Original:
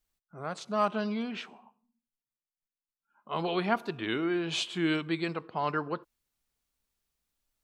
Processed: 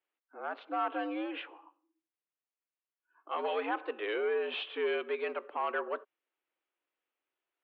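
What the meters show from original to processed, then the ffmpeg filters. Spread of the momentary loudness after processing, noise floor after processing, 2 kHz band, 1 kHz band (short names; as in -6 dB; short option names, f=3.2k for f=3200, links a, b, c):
9 LU, under -85 dBFS, -2.0 dB, -2.5 dB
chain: -filter_complex "[0:a]asplit=2[a][b];[b]alimiter=limit=-21.5dB:level=0:latency=1,volume=-0.5dB[c];[a][c]amix=inputs=2:normalize=0,asoftclip=type=tanh:threshold=-18.5dB,highpass=f=230:t=q:w=0.5412,highpass=f=230:t=q:w=1.307,lowpass=f=3k:t=q:w=0.5176,lowpass=f=3k:t=q:w=0.7071,lowpass=f=3k:t=q:w=1.932,afreqshift=89,volume=-5.5dB"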